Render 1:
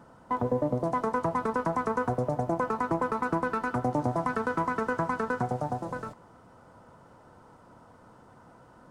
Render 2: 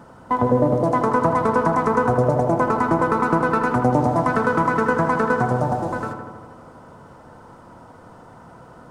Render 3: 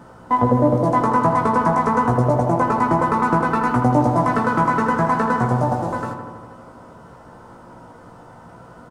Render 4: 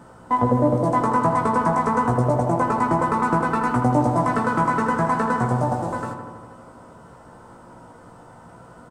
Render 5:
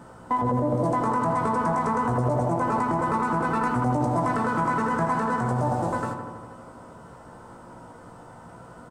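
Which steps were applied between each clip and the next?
filtered feedback delay 80 ms, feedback 75%, low-pass 2.7 kHz, level -7 dB; trim +8.5 dB
doubling 17 ms -3.5 dB
peaking EQ 8.2 kHz +8 dB 0.29 oct; trim -2.5 dB
peak limiter -15.5 dBFS, peak gain reduction 9.5 dB

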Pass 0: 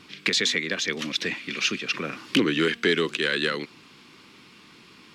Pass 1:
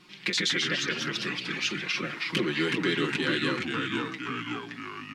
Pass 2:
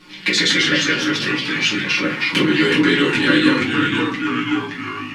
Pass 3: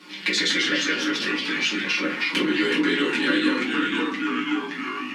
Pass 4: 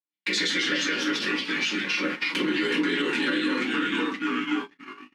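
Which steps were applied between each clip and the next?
comb 5.6 ms, depth 78%; ever faster or slower copies 85 ms, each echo -2 st, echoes 3; trim -7.5 dB
simulated room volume 130 m³, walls furnished, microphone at 2.3 m; trim +6 dB
steep high-pass 190 Hz 36 dB/octave; compression 1.5:1, threshold -30 dBFS, peak gain reduction 7.5 dB
gate -27 dBFS, range -59 dB; peak limiter -14.5 dBFS, peak gain reduction 5.5 dB; trim -1.5 dB

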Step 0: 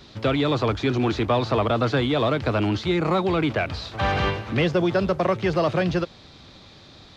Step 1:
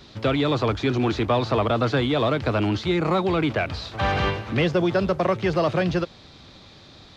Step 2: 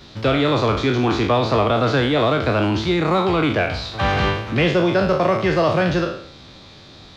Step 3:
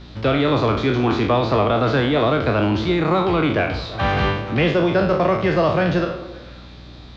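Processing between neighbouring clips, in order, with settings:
no audible change
spectral sustain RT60 0.60 s; trim +2.5 dB
distance through air 100 m; repeats whose band climbs or falls 111 ms, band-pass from 210 Hz, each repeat 0.7 oct, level -10 dB; hum 60 Hz, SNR 22 dB

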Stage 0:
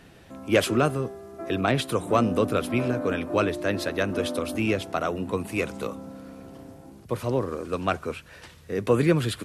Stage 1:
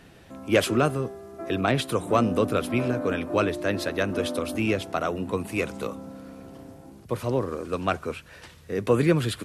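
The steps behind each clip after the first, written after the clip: no audible change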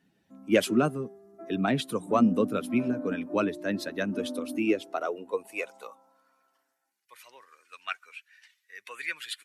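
expander on every frequency bin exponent 1.5; high-pass sweep 200 Hz -> 2 kHz, 4.21–7.06 s; trim -2 dB

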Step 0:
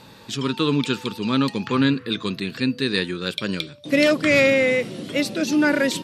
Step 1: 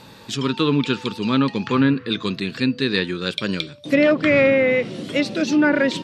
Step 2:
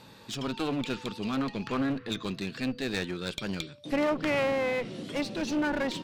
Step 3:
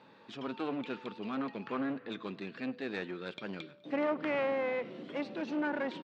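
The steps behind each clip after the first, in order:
low-pass that closes with the level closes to 2.1 kHz, closed at -13.5 dBFS; trim +2 dB
one-sided clip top -25 dBFS; trim -8 dB
band-pass 230–2400 Hz; feedback delay 100 ms, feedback 58%, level -23.5 dB; trim -4 dB

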